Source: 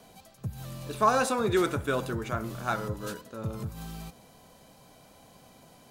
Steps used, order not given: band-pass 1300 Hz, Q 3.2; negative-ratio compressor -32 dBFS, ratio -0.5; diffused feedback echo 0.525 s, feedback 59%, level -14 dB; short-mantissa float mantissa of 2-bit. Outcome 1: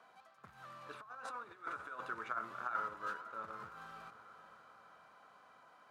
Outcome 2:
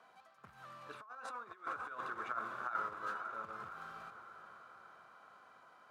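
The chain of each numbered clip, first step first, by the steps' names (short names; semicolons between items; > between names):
negative-ratio compressor > diffused feedback echo > short-mantissa float > band-pass; diffused feedback echo > negative-ratio compressor > short-mantissa float > band-pass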